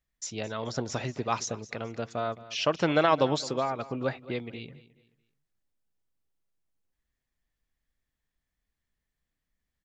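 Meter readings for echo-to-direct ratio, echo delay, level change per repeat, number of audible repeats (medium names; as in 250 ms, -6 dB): -17.5 dB, 216 ms, -9.5 dB, 2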